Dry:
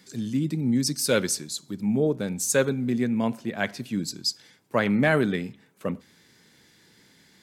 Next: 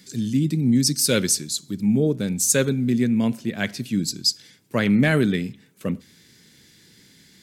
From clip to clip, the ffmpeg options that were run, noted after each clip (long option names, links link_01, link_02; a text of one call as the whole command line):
ffmpeg -i in.wav -af "equalizer=frequency=870:width_type=o:width=2:gain=-11.5,volume=7dB" out.wav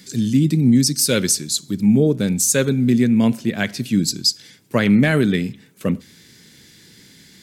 ffmpeg -i in.wav -af "alimiter=limit=-12dB:level=0:latency=1:release=219,volume=5.5dB" out.wav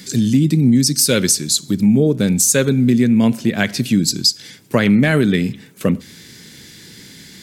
ffmpeg -i in.wav -af "acompressor=threshold=-22dB:ratio=2,volume=7.5dB" out.wav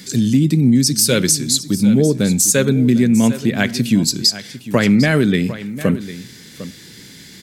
ffmpeg -i in.wav -af "aecho=1:1:752:0.188" out.wav